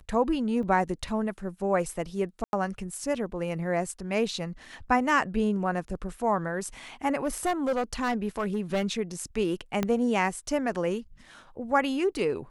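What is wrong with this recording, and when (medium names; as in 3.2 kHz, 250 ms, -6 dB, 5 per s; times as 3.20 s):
0.63 s: dropout 3.3 ms
2.44–2.53 s: dropout 91 ms
7.24–8.85 s: clipped -22.5 dBFS
9.83 s: pop -13 dBFS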